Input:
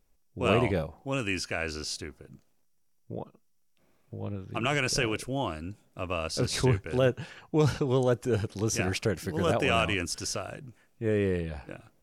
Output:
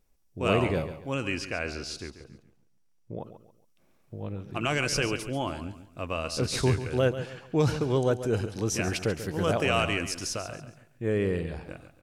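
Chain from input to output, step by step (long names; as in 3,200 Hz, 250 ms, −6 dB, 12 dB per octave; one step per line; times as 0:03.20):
0:01.14–0:03.20: high-shelf EQ 7,800 Hz −10.5 dB
on a send: repeating echo 139 ms, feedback 33%, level −12 dB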